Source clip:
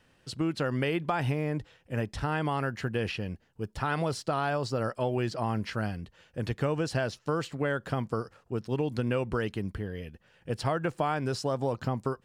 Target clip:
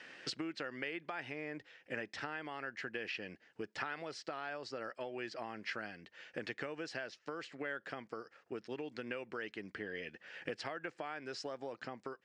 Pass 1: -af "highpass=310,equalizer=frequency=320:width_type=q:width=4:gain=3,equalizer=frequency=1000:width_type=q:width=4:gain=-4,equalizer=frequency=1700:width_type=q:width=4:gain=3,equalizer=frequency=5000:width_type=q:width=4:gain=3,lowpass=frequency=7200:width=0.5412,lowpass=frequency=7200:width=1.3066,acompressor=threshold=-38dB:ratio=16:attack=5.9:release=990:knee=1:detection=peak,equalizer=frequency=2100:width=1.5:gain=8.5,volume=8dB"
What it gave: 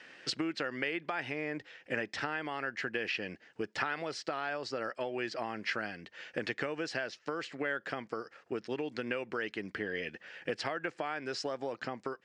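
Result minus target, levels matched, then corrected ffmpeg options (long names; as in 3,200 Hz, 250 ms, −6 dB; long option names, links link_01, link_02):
downward compressor: peak gain reduction −6.5 dB
-af "highpass=310,equalizer=frequency=320:width_type=q:width=4:gain=3,equalizer=frequency=1000:width_type=q:width=4:gain=-4,equalizer=frequency=1700:width_type=q:width=4:gain=3,equalizer=frequency=5000:width_type=q:width=4:gain=3,lowpass=frequency=7200:width=0.5412,lowpass=frequency=7200:width=1.3066,acompressor=threshold=-45dB:ratio=16:attack=5.9:release=990:knee=1:detection=peak,equalizer=frequency=2100:width=1.5:gain=8.5,volume=8dB"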